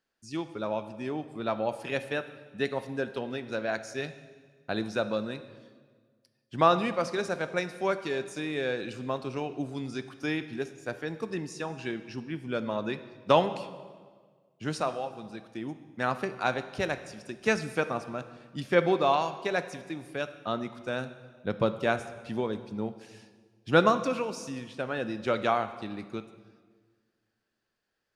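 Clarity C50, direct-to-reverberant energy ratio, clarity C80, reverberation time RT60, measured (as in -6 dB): 12.5 dB, 11.0 dB, 14.0 dB, 1.6 s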